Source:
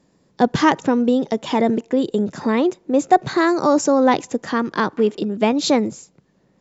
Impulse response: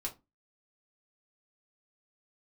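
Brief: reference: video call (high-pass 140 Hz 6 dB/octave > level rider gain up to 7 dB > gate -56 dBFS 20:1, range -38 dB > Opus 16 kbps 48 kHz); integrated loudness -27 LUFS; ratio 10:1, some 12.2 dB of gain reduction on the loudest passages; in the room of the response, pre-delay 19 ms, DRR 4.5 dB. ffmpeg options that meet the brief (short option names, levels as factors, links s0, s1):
-filter_complex "[0:a]acompressor=threshold=0.0891:ratio=10,asplit=2[s0][s1];[1:a]atrim=start_sample=2205,adelay=19[s2];[s1][s2]afir=irnorm=-1:irlink=0,volume=0.562[s3];[s0][s3]amix=inputs=2:normalize=0,highpass=f=140:p=1,dynaudnorm=m=2.24,agate=range=0.0126:threshold=0.00158:ratio=20,volume=0.891" -ar 48000 -c:a libopus -b:a 16k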